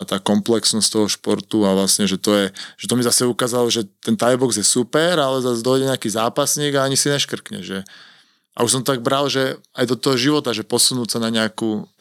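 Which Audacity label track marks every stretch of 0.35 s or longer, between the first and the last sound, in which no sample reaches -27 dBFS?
7.870000	8.570000	silence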